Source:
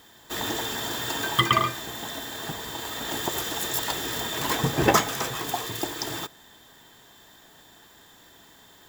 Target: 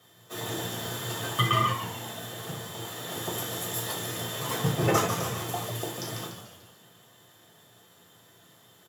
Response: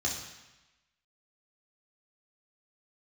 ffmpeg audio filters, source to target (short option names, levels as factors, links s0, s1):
-filter_complex "[0:a]asplit=7[s0][s1][s2][s3][s4][s5][s6];[s1]adelay=146,afreqshift=-120,volume=0.422[s7];[s2]adelay=292,afreqshift=-240,volume=0.211[s8];[s3]adelay=438,afreqshift=-360,volume=0.106[s9];[s4]adelay=584,afreqshift=-480,volume=0.0525[s10];[s5]adelay=730,afreqshift=-600,volume=0.0263[s11];[s6]adelay=876,afreqshift=-720,volume=0.0132[s12];[s0][s7][s8][s9][s10][s11][s12]amix=inputs=7:normalize=0[s13];[1:a]atrim=start_sample=2205,afade=t=out:st=0.21:d=0.01,atrim=end_sample=9702,asetrate=74970,aresample=44100[s14];[s13][s14]afir=irnorm=-1:irlink=0,volume=0.447"